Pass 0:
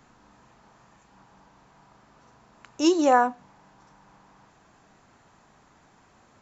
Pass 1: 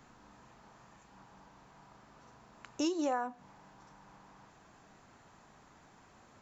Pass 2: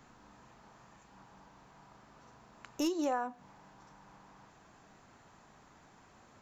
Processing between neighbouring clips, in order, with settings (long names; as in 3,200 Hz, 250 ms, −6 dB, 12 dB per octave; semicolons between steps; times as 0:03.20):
downward compressor 8 to 1, threshold −28 dBFS, peak gain reduction 14 dB; level −2 dB
stylus tracing distortion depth 0.023 ms